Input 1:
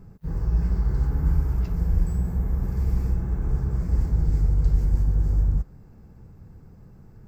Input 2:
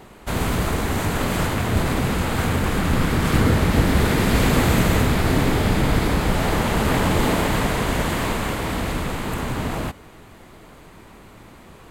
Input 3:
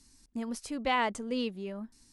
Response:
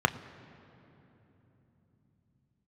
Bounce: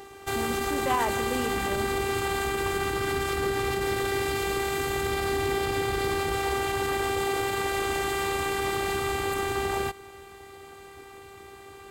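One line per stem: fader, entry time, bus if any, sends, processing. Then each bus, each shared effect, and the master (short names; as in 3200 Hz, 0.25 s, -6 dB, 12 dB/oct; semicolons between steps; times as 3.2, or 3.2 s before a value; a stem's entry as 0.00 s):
-14.0 dB, 0.55 s, no send, compressor, threshold -23 dBFS, peak gain reduction 9 dB
+2.5 dB, 0.00 s, no send, limiter -14.5 dBFS, peak gain reduction 10 dB; robotiser 395 Hz
-5.5 dB, 0.00 s, send -4.5 dB, dry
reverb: on, RT60 3.5 s, pre-delay 3 ms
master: HPF 60 Hz; limiter -13.5 dBFS, peak gain reduction 6.5 dB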